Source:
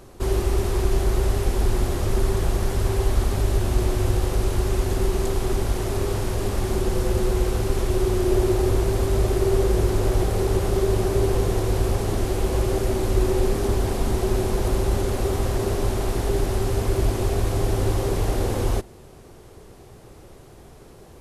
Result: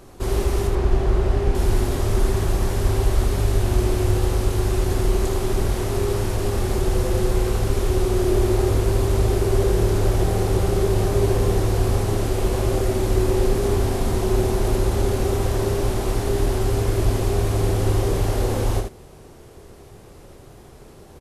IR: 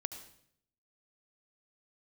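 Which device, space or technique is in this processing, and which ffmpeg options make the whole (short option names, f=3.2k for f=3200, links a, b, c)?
slapback doubling: -filter_complex "[0:a]asettb=1/sr,asplit=3[a][b][c];[a]atrim=end=0.674[d];[b]atrim=start=0.67:end=1.55,asetpts=PTS-STARTPTS,afade=t=in:d=0.004:c=qsin,afade=t=out:st=0.876:d=0.004:c=qsin,aemphasis=mode=reproduction:type=75fm[e];[c]atrim=start=1.546[f];[d][e]acrossfade=d=0.004:c1=hsin:c2=qsin[g];[g][f]acrossfade=d=0.004:c1=qsin:c2=hsin,asplit=3[h][i][j];[i]adelay=27,volume=-8dB[k];[j]adelay=77,volume=-6dB[l];[h][k][l]amix=inputs=3:normalize=0"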